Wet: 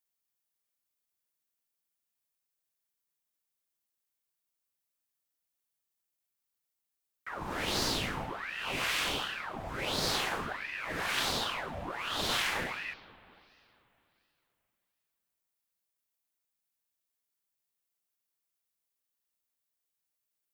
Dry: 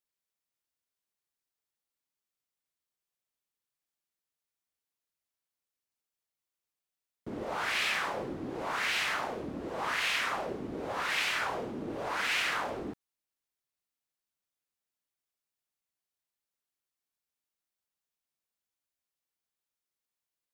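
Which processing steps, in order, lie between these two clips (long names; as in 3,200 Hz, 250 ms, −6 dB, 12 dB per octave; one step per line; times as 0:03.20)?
high-shelf EQ 8,900 Hz +9.5 dB
spring reverb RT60 3.1 s, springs 40/44 ms, chirp 50 ms, DRR 16 dB
ring modulator whose carrier an LFO sweeps 1,300 Hz, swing 75%, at 1.4 Hz
level +1.5 dB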